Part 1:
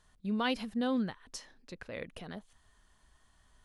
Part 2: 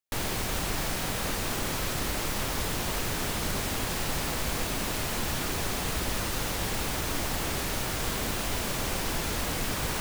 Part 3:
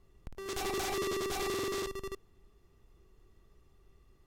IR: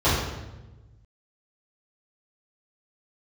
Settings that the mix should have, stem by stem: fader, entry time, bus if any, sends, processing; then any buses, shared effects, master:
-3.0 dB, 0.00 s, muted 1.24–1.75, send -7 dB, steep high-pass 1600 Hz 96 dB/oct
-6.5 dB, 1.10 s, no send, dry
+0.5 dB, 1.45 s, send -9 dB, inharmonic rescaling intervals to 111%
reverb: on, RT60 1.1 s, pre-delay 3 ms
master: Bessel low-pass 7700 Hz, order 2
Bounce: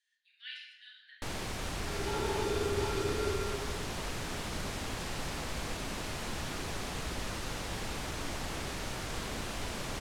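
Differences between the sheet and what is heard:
stem 1 -3.0 dB -> -15.0 dB; stem 3 +0.5 dB -> -9.0 dB

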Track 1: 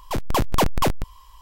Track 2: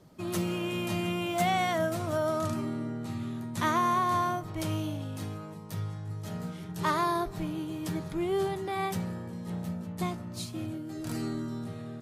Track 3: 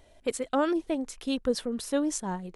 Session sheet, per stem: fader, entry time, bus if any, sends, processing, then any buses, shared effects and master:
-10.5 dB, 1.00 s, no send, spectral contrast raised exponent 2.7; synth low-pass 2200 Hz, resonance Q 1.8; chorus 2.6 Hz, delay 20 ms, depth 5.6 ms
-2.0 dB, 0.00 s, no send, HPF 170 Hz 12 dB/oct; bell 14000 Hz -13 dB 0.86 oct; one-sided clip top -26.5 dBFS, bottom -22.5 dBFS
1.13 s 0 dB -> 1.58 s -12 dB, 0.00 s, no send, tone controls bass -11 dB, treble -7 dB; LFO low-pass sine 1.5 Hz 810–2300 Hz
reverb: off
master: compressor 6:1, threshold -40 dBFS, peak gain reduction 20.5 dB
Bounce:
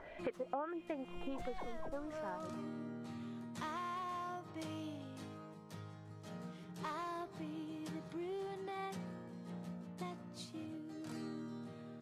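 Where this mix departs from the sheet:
stem 2 -2.0 dB -> -9.0 dB; stem 3 0.0 dB -> +7.5 dB

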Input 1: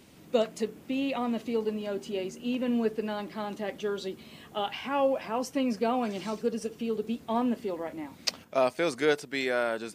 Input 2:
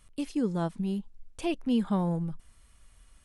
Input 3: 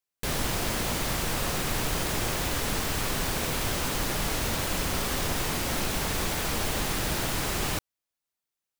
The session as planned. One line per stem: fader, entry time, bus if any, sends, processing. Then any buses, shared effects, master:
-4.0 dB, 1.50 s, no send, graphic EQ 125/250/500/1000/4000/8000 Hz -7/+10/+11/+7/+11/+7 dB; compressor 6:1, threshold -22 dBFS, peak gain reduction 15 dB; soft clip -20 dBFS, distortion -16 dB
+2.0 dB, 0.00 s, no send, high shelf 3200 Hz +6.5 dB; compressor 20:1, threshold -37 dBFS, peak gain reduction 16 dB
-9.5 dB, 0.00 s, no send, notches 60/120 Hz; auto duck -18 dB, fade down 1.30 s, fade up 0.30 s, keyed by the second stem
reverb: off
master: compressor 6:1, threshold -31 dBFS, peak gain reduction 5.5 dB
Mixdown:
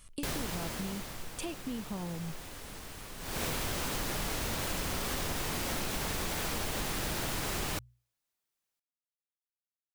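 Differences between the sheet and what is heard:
stem 1: muted; stem 3 -9.5 dB -> +1.0 dB

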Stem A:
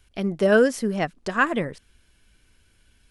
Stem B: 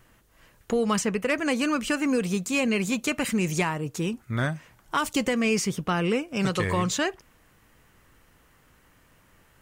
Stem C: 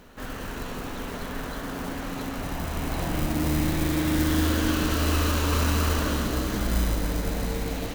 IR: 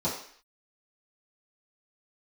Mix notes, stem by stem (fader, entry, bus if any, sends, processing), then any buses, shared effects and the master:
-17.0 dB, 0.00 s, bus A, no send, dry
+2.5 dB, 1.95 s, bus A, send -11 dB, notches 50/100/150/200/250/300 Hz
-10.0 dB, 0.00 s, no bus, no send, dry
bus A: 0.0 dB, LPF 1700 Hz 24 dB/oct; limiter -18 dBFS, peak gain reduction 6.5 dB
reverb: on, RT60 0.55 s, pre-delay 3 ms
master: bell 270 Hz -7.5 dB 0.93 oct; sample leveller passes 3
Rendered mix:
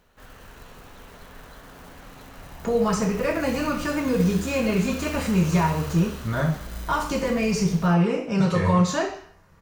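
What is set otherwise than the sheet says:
stem A: muted; master: missing sample leveller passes 3

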